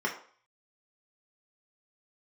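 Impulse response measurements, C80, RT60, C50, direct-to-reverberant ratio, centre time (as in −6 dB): 13.0 dB, 0.50 s, 9.0 dB, −2.5 dB, 20 ms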